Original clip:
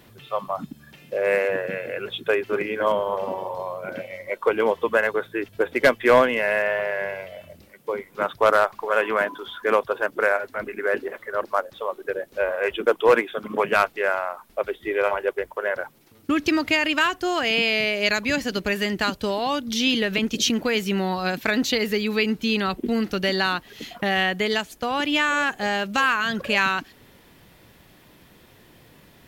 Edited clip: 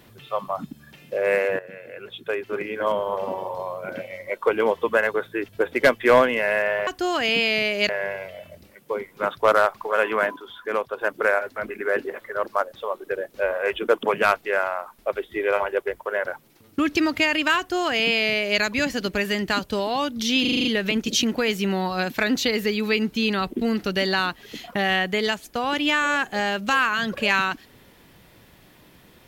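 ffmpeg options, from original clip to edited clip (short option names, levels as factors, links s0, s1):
-filter_complex "[0:a]asplit=13[s0][s1][s2][s3][s4][s5][s6][s7][s8][s9][s10][s11][s12];[s0]atrim=end=1.59,asetpts=PTS-STARTPTS,afade=t=out:st=1.586:d=0.004:c=hsin:silence=0.199526[s13];[s1]atrim=start=1.59:end=6.872,asetpts=PTS-STARTPTS,afade=t=in:d=1.7:silence=0.199526[s14];[s2]atrim=start=17.088:end=18.112[s15];[s3]atrim=start=6.868:end=9.342[s16];[s4]atrim=start=9.338:end=9.992,asetpts=PTS-STARTPTS,volume=0.562[s17];[s5]atrim=start=9.988:end=13.012[s18];[s6]atrim=start=13.538:end=19.962[s19];[s7]atrim=start=19.918:end=19.962[s20];[s8]atrim=start=19.918:end=19.962[s21];[s9]atrim=start=19.918:end=19.962[s22];[s10]atrim=start=19.918:end=19.962[s23];[s11]atrim=start=19.918:end=19.962[s24];[s12]atrim=start=19.918[s25];[s13][s14]concat=n=2:v=0:a=1[s26];[s26][s15]acrossfade=d=0.004:c1=hsin:c2=hsin[s27];[s27][s16]acrossfade=d=0.004:c1=hsin:c2=hsin[s28];[s28][s17]acrossfade=d=0.004:c1=hsin:c2=hsin[s29];[s29][s18]acrossfade=d=0.004:c1=hsin:c2=hsin[s30];[s30][s19]acrossfade=d=0.004:c1=hsin:c2=hsin[s31];[s31][s20]acrossfade=d=0.004:c1=hsin:c2=hsin[s32];[s32][s21]acrossfade=d=0.004:c1=hsin:c2=hsin[s33];[s33][s22]acrossfade=d=0.004:c1=hsin:c2=hsin[s34];[s34][s23]acrossfade=d=0.004:c1=hsin:c2=hsin[s35];[s35][s24]acrossfade=d=0.004:c1=hsin:c2=hsin[s36];[s36][s25]acrossfade=d=0.004:c1=hsin:c2=hsin"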